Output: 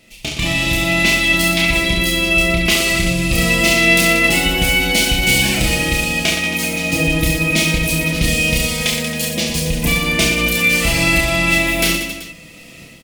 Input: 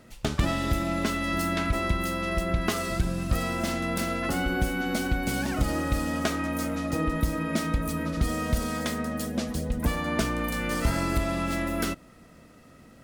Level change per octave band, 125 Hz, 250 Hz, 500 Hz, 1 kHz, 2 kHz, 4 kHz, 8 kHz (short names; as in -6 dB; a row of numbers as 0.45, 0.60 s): +9.0, +8.0, +9.5, +5.5, +18.0, +20.5, +17.5 dB